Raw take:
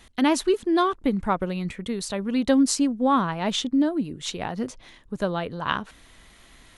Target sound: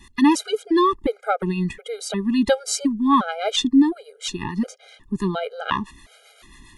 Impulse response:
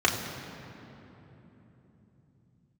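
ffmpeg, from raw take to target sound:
-filter_complex "[0:a]acrossover=split=570[a][b];[a]aeval=exprs='val(0)*(1-0.5/2+0.5/2*cos(2*PI*7.4*n/s))':c=same[c];[b]aeval=exprs='val(0)*(1-0.5/2-0.5/2*cos(2*PI*7.4*n/s))':c=same[d];[c][d]amix=inputs=2:normalize=0,afftfilt=real='re*gt(sin(2*PI*1.4*pts/sr)*(1-2*mod(floor(b*sr/1024/410),2)),0)':imag='im*gt(sin(2*PI*1.4*pts/sr)*(1-2*mod(floor(b*sr/1024/410),2)),0)':win_size=1024:overlap=0.75,volume=8dB"

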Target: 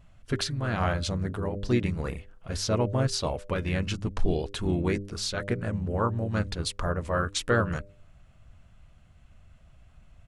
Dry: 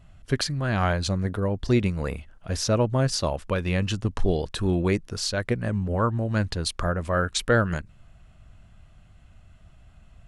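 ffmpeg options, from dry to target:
-filter_complex "[0:a]asplit=2[a][b];[b]asetrate=37084,aresample=44100,atempo=1.18921,volume=-6dB[c];[a][c]amix=inputs=2:normalize=0,bandreject=f=99.51:t=h:w=4,bandreject=f=199.02:t=h:w=4,bandreject=f=298.53:t=h:w=4,bandreject=f=398.04:t=h:w=4,bandreject=f=497.55:t=h:w=4,bandreject=f=597.06:t=h:w=4,volume=-4dB"

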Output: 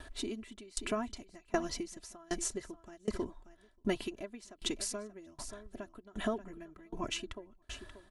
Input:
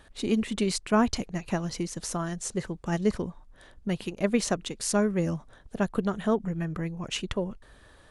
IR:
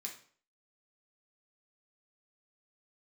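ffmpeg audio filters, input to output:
-filter_complex "[0:a]aecho=1:1:3:0.85,acompressor=threshold=-29dB:ratio=5,asplit=2[a][b];[b]aecho=0:1:583:0.158[c];[a][c]amix=inputs=2:normalize=0,aeval=exprs='val(0)*pow(10,-29*if(lt(mod(1.3*n/s,1),2*abs(1.3)/1000),1-mod(1.3*n/s,1)/(2*abs(1.3)/1000),(mod(1.3*n/s,1)-2*abs(1.3)/1000)/(1-2*abs(1.3)/1000))/20)':c=same,volume=3.5dB"

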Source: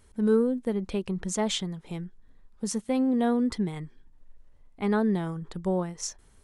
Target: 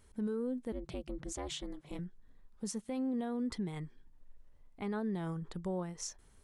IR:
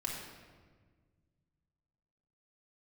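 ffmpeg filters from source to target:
-filter_complex "[0:a]alimiter=level_in=0.5dB:limit=-24dB:level=0:latency=1:release=168,volume=-0.5dB,asettb=1/sr,asplit=3[a][b][c];[a]atrim=end=0.724[d];[b]atrim=start=0.72:end=1.99,asetpts=PTS-STARTPTS,afade=t=in:d=0.004:c=qsin,afade=t=out:st=1.266:d=0.004:c=qsin,aeval=exprs='val(0)*sin(2*PI*150*n/s)':c=same[e];[c]atrim=start=1.986[f];[d][e]acrossfade=d=0.004:c1=hsin:c2=qsin[g];[g][f]acrossfade=d=0.004:c1=qsin:c2=hsin,volume=-4.5dB"

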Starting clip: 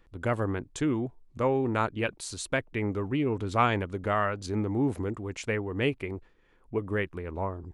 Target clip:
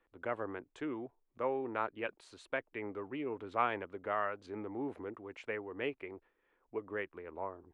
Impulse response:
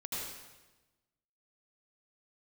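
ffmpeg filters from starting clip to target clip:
-filter_complex "[0:a]acrossover=split=300 3100:gain=0.141 1 0.1[a][b][c];[a][b][c]amix=inputs=3:normalize=0,volume=-7dB"

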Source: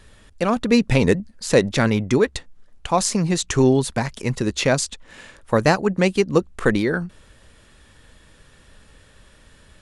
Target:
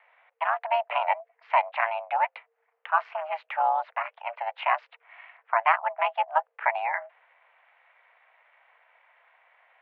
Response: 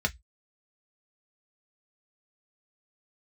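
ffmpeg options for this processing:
-af "aeval=exprs='val(0)*sin(2*PI*160*n/s)':c=same,highpass=f=410:t=q:w=0.5412,highpass=f=410:t=q:w=1.307,lowpass=f=2.3k:t=q:w=0.5176,lowpass=f=2.3k:t=q:w=0.7071,lowpass=f=2.3k:t=q:w=1.932,afreqshift=300,volume=-1dB"

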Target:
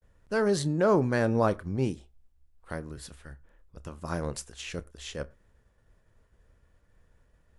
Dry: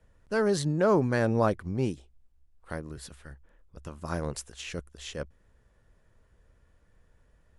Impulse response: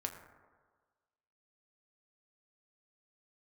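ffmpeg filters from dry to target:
-filter_complex "[0:a]agate=range=-33dB:threshold=-60dB:ratio=3:detection=peak,asplit=2[a][b];[1:a]atrim=start_sample=2205,atrim=end_sample=3969,adelay=30[c];[b][c]afir=irnorm=-1:irlink=0,volume=-15dB[d];[a][d]amix=inputs=2:normalize=0"

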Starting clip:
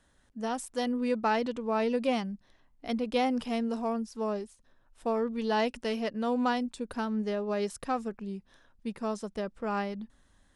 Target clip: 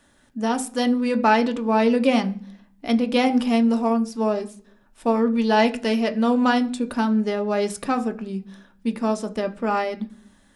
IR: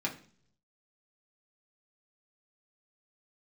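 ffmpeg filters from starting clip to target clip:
-filter_complex "[0:a]asplit=2[a][b];[1:a]atrim=start_sample=2205,highshelf=f=7.6k:g=7[c];[b][c]afir=irnorm=-1:irlink=0,volume=-5.5dB[d];[a][d]amix=inputs=2:normalize=0,volume=5dB"

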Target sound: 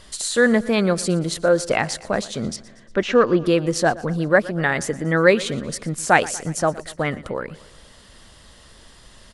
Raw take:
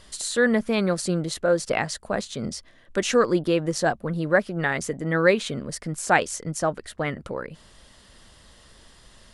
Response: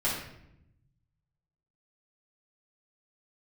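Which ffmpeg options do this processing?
-filter_complex "[0:a]asettb=1/sr,asplit=3[a][b][c];[a]atrim=end=2.564[d];[b]atrim=start=2.56:end=3.46,asetpts=PTS-STARTPTS,afade=t=in:d=0.004:c=qsin,afade=t=out:st=0.896:d=0.004:c=qsin,lowpass=2.8k[e];[c]atrim=start=3.456[f];[d][e]acrossfade=d=0.004:c1=hsin:c2=qsin[g];[g][f]acrossfade=d=0.004:c1=qsin:c2=hsin,asplit=2[h][i];[i]aecho=0:1:118|236|354|472|590:0.106|0.0604|0.0344|0.0196|0.0112[j];[h][j]amix=inputs=2:normalize=0,volume=4dB"

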